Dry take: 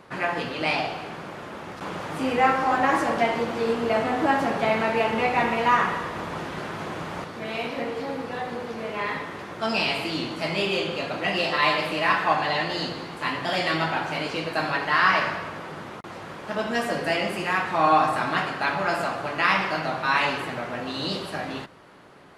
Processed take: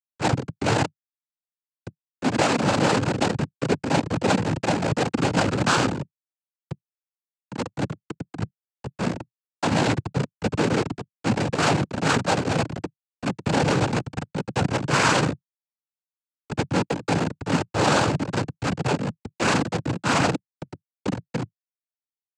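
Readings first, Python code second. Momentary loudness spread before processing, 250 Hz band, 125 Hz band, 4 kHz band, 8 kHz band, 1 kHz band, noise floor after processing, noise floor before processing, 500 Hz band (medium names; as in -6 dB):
13 LU, +5.0 dB, +11.0 dB, -1.0 dB, +12.0 dB, -3.5 dB, under -85 dBFS, -39 dBFS, 0.0 dB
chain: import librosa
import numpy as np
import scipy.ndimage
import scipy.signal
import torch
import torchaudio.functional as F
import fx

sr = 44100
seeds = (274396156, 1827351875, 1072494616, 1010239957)

p1 = fx.high_shelf(x, sr, hz=4000.0, db=-7.0)
p2 = fx.rider(p1, sr, range_db=4, speed_s=2.0)
p3 = p1 + (p2 * 10.0 ** (3.0 / 20.0))
p4 = fx.schmitt(p3, sr, flips_db=-12.5)
y = fx.noise_vocoder(p4, sr, seeds[0], bands=8)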